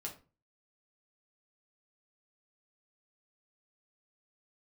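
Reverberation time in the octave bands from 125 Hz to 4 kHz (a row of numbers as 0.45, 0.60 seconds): 0.50, 0.40, 0.35, 0.30, 0.30, 0.25 seconds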